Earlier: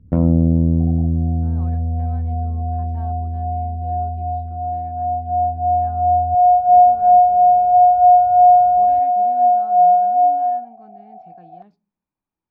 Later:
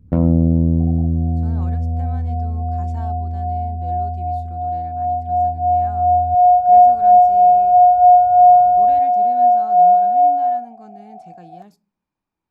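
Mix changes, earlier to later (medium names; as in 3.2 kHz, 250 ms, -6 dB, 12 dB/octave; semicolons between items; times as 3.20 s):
speech +4.5 dB; master: remove distance through air 270 m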